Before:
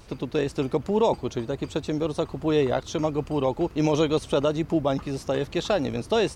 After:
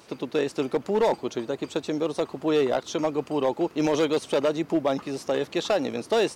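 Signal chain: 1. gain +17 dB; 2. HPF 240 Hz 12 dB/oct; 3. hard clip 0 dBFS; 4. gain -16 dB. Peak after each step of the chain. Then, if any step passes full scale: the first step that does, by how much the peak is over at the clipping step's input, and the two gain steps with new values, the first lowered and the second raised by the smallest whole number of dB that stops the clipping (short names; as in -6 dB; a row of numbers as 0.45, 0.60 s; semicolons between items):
+5.5, +6.5, 0.0, -16.0 dBFS; step 1, 6.5 dB; step 1 +10 dB, step 4 -9 dB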